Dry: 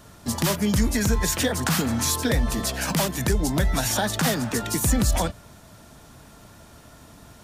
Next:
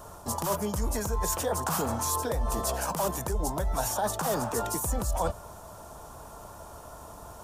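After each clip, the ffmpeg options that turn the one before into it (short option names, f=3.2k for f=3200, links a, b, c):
-af "equalizer=f=125:t=o:w=1:g=-6,equalizer=f=250:t=o:w=1:g=-9,equalizer=f=500:t=o:w=1:g=3,equalizer=f=1k:t=o:w=1:g=8,equalizer=f=2k:t=o:w=1:g=-12,equalizer=f=4k:t=o:w=1:g=-8,areverse,acompressor=threshold=-30dB:ratio=6,areverse,volume=4dB"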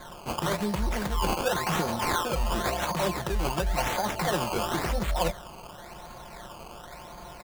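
-af "aecho=1:1:5.6:0.73,acrusher=samples=16:mix=1:aa=0.000001:lfo=1:lforange=16:lforate=0.94"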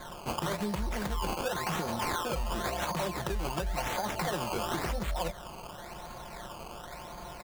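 -af "acompressor=threshold=-29dB:ratio=6"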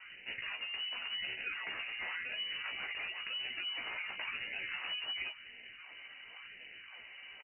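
-filter_complex "[0:a]asplit=2[a][b];[b]adelay=16,volume=-5dB[c];[a][c]amix=inputs=2:normalize=0,lowpass=f=2.6k:t=q:w=0.5098,lowpass=f=2.6k:t=q:w=0.6013,lowpass=f=2.6k:t=q:w=0.9,lowpass=f=2.6k:t=q:w=2.563,afreqshift=-3000,volume=-9dB"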